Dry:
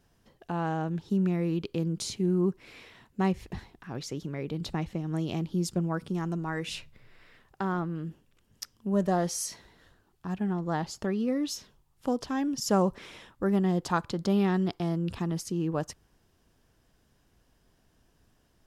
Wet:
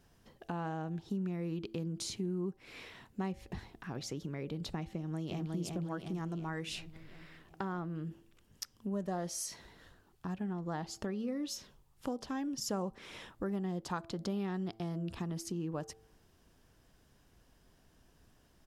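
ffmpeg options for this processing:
-filter_complex "[0:a]asplit=2[s0][s1];[s1]afade=t=in:st=4.91:d=0.01,afade=t=out:st=5.52:d=0.01,aecho=0:1:360|720|1080|1440|1800|2160|2520:0.707946|0.353973|0.176986|0.0884932|0.0442466|0.0221233|0.0110617[s2];[s0][s2]amix=inputs=2:normalize=0,bandreject=f=111.1:t=h:w=4,bandreject=f=222.2:t=h:w=4,bandreject=f=333.3:t=h:w=4,bandreject=f=444.4:t=h:w=4,bandreject=f=555.5:t=h:w=4,bandreject=f=666.6:t=h:w=4,bandreject=f=777.7:t=h:w=4,acompressor=threshold=0.01:ratio=2.5,volume=1.12"

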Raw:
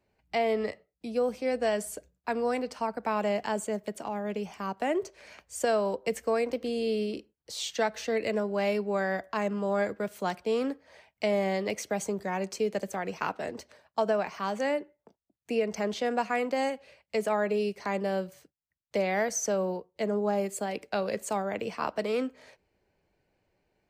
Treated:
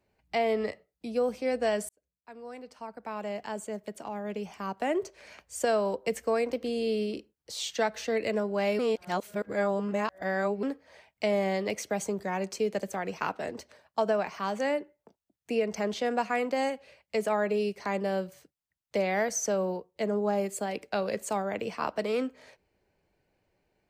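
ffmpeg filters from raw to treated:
-filter_complex "[0:a]asplit=4[s0][s1][s2][s3];[s0]atrim=end=1.89,asetpts=PTS-STARTPTS,afade=t=out:st=1.886:d=0.004:c=hsin[s4];[s1]atrim=start=1.89:end=8.792,asetpts=PTS-STARTPTS,afade=t=in:d=3.1[s5];[s2]atrim=start=8.788:end=10.632,asetpts=PTS-STARTPTS,areverse[s6];[s3]atrim=start=10.628[s7];[s4][s5]concat=n=2:v=0:a=1[s8];[s8][s6]acrossfade=d=0.004:c1=hsin:c2=hsin[s9];[s9][s7]acrossfade=d=0.004:c1=hsin:c2=hsin"

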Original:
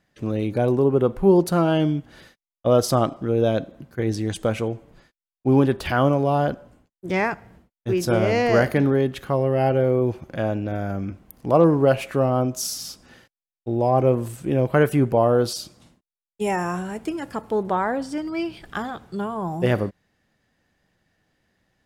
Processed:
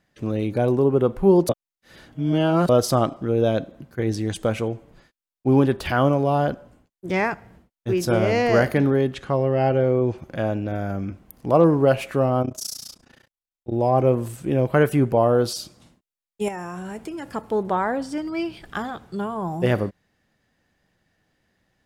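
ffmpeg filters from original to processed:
-filter_complex "[0:a]asettb=1/sr,asplit=3[s0][s1][s2];[s0]atrim=end=9.144[s3];[s1]atrim=start=9.14:end=10.18,asetpts=PTS-STARTPTS,afade=t=in:d=0.004:c=qsin,afade=t=out:st=1.036:d=0.004:c=qsin,lowpass=f=8600:w=0.5412,lowpass=f=8600:w=1.3066[s4];[s2]atrim=start=10.176[s5];[s3][s4]acrossfade=d=0.004:c1=hsin:c2=qsin[s6];[s6][s5]acrossfade=d=0.004:c1=qsin:c2=hsin,asplit=3[s7][s8][s9];[s7]afade=t=out:st=12.42:d=0.02[s10];[s8]tremolo=f=29:d=0.947,afade=t=in:st=12.42:d=0.02,afade=t=out:st=13.71:d=0.02[s11];[s9]afade=t=in:st=13.71:d=0.02[s12];[s10][s11][s12]amix=inputs=3:normalize=0,asettb=1/sr,asplit=3[s13][s14][s15];[s13]atrim=end=16.484[s16];[s14]atrim=start=16.48:end=17.31,asetpts=PTS-STARTPTS,afade=t=in:d=0.004:c=qsin,afade=t=out:st=0.826:d=0.004:c=qsin,acompressor=threshold=0.0398:ratio=6:attack=3.2:release=140:knee=1:detection=peak[s17];[s15]atrim=start=17.306[s18];[s16][s17]acrossfade=d=0.004:c1=hsin:c2=qsin[s19];[s19][s18]acrossfade=d=0.004:c1=qsin:c2=hsin,asplit=3[s20][s21][s22];[s20]atrim=end=1.492[s23];[s21]atrim=start=1.488:end=2.692,asetpts=PTS-STARTPTS,areverse[s24];[s22]atrim=start=2.688[s25];[s23][s24]acrossfade=d=0.004:c1=hsin:c2=hsin[s26];[s26][s25]acrossfade=d=0.004:c1=hsin:c2=hsin"

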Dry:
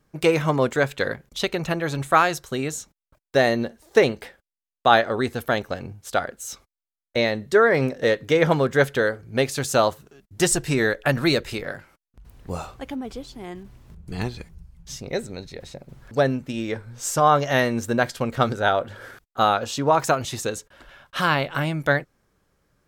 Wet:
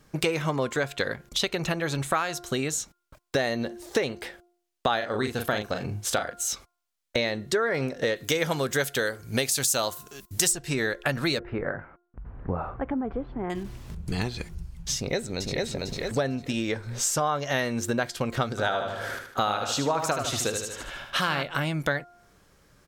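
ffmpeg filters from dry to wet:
-filter_complex "[0:a]asplit=3[s0][s1][s2];[s0]afade=t=out:st=5:d=0.02[s3];[s1]asplit=2[s4][s5];[s5]adelay=38,volume=0.501[s6];[s4][s6]amix=inputs=2:normalize=0,afade=t=in:st=5:d=0.02,afade=t=out:st=6.32:d=0.02[s7];[s2]afade=t=in:st=6.32:d=0.02[s8];[s3][s7][s8]amix=inputs=3:normalize=0,asplit=3[s9][s10][s11];[s9]afade=t=out:st=8.15:d=0.02[s12];[s10]aemphasis=mode=production:type=75kf,afade=t=in:st=8.15:d=0.02,afade=t=out:st=10.51:d=0.02[s13];[s11]afade=t=in:st=10.51:d=0.02[s14];[s12][s13][s14]amix=inputs=3:normalize=0,asettb=1/sr,asplit=3[s15][s16][s17];[s15]atrim=end=11.394[s18];[s16]atrim=start=11.39:end=13.5,asetpts=PTS-STARTPTS,afade=t=in:d=0.004:c=qsin,afade=t=out:st=2.106:d=0.004:c=qsin,lowpass=f=1600:w=0.5412,lowpass=f=1600:w=1.3066[s19];[s17]atrim=start=13.496[s20];[s18][s19]acrossfade=d=0.004:c1=hsin:c2=qsin[s21];[s21][s20]acrossfade=d=0.004:c1=qsin:c2=hsin,asplit=2[s22][s23];[s23]afade=t=in:st=14.95:d=0.01,afade=t=out:st=15.58:d=0.01,aecho=0:1:450|900|1350|1800|2250:0.668344|0.23392|0.0818721|0.0286552|0.0100293[s24];[s22][s24]amix=inputs=2:normalize=0,asplit=3[s25][s26][s27];[s25]afade=t=out:st=18.57:d=0.02[s28];[s26]aecho=1:1:76|152|228|304|380:0.447|0.197|0.0865|0.0381|0.0167,afade=t=in:st=18.57:d=0.02,afade=t=out:st=21.42:d=0.02[s29];[s27]afade=t=in:st=21.42:d=0.02[s30];[s28][s29][s30]amix=inputs=3:normalize=0,equalizer=f=5200:w=0.4:g=4.5,bandreject=f=351.3:t=h:w=4,bandreject=f=702.6:t=h:w=4,bandreject=f=1053.9:t=h:w=4,bandreject=f=1405.2:t=h:w=4,acompressor=threshold=0.0224:ratio=4,volume=2.24"

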